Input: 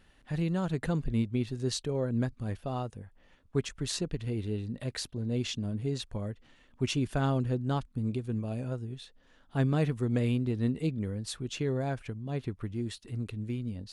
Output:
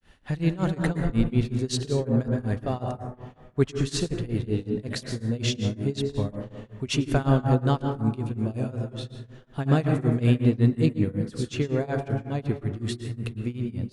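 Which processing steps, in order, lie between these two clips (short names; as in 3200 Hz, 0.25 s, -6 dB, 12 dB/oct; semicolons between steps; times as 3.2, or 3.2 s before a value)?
plate-style reverb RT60 1.4 s, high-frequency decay 0.25×, pre-delay 0.1 s, DRR 4 dB; grains 0.217 s, grains 5.4/s, spray 31 ms, pitch spread up and down by 0 st; gain +8 dB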